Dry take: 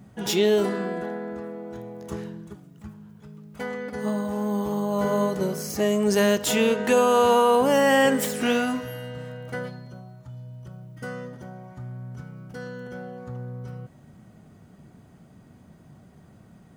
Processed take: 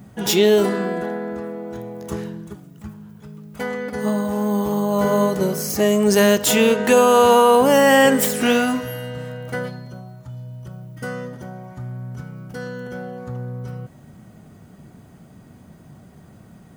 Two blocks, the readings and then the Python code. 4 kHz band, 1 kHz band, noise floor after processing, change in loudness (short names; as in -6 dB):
+6.0 dB, +5.5 dB, -47 dBFS, +6.0 dB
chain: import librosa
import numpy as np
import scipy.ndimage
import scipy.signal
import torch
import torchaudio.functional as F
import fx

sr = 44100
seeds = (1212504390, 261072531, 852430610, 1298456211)

y = fx.high_shelf(x, sr, hz=11000.0, db=7.0)
y = y * librosa.db_to_amplitude(5.5)